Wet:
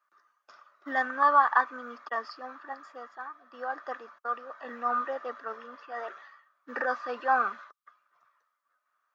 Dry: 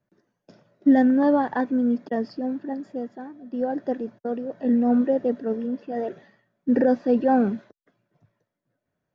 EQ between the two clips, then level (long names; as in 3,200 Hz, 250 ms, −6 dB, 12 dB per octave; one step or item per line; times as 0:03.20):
high-pass with resonance 1,200 Hz, resonance Q 15
0.0 dB